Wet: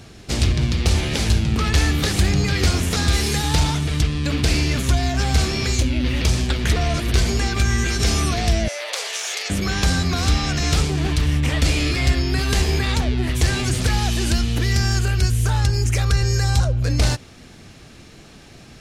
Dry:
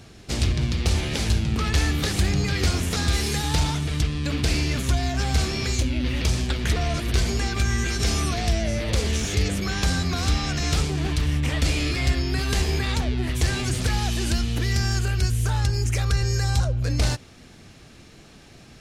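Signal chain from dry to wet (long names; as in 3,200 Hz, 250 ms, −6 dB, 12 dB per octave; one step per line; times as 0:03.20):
0:08.68–0:09.50: inverse Chebyshev high-pass filter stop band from 180 Hz, stop band 60 dB
level +4 dB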